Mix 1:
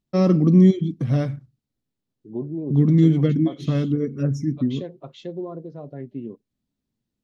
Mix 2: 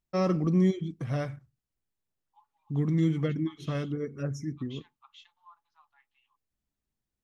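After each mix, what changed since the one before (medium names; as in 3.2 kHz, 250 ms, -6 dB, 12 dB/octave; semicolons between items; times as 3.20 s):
second voice: add rippled Chebyshev high-pass 820 Hz, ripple 9 dB; master: add ten-band graphic EQ 125 Hz -8 dB, 250 Hz -12 dB, 500 Hz -4 dB, 4 kHz -7 dB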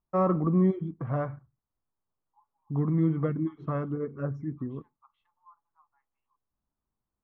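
second voice -9.5 dB; master: add resonant low-pass 1.1 kHz, resonance Q 2.6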